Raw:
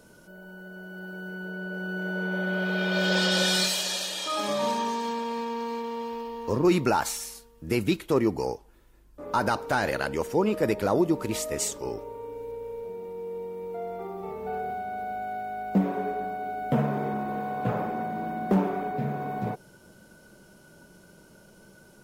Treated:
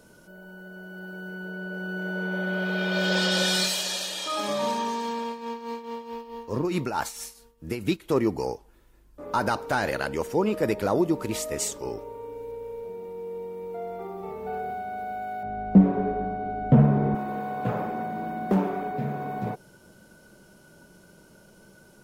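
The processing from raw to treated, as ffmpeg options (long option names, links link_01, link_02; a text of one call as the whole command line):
ffmpeg -i in.wav -filter_complex "[0:a]asettb=1/sr,asplit=3[link_01][link_02][link_03];[link_01]atrim=end=5.284[link_04];[link_02]atrim=start=5.28:end=8.12,asetpts=PTS-STARTPTS,afade=type=in:duration=0.004:curve=qsin,afade=type=out:start_time=2.836:duration=0.004:curve=qsin,tremolo=f=4.6:d=0.68[link_05];[link_03]atrim=start=8.116[link_06];[link_04][link_05]acrossfade=duration=0.004:curve1=hsin:curve2=qsin[link_07];[link_07][link_06]acrossfade=duration=0.004:curve1=qsin:curve2=hsin,asettb=1/sr,asplit=3[link_08][link_09][link_10];[link_08]atrim=end=15.434[link_11];[link_09]atrim=start=15.43:end=17.15,asetpts=PTS-STARTPTS,afade=type=in:duration=0.004:curve=qsin,afade=type=out:start_time=1.716:duration=0.004:curve=qsin,aemphasis=mode=reproduction:type=riaa[link_12];[link_10]atrim=start=17.146[link_13];[link_11][link_12]acrossfade=duration=0.004:curve1=hsin:curve2=qsin[link_14];[link_14][link_13]acrossfade=duration=0.004:curve1=qsin:curve2=hsin" out.wav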